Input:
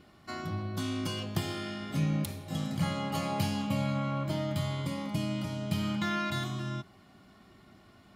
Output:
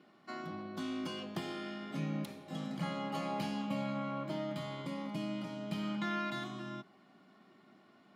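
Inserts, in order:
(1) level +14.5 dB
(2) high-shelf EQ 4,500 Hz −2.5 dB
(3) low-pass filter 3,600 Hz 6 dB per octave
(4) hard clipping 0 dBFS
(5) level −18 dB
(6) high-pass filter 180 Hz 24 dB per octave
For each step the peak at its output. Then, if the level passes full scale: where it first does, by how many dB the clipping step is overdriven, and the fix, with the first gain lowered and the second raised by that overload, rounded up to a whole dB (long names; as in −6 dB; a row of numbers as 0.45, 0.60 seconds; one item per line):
−2.0, −2.5, −3.0, −3.0, −21.0, −24.5 dBFS
no step passes full scale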